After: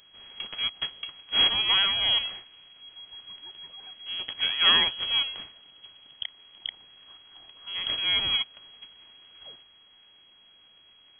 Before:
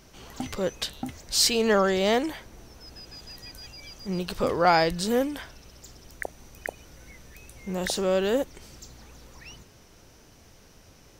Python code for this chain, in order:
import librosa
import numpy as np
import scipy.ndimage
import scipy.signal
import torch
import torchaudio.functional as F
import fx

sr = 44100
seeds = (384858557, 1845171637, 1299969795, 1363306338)

y = fx.low_shelf(x, sr, hz=320.0, db=-11.0)
y = np.abs(y)
y = fx.freq_invert(y, sr, carrier_hz=3300)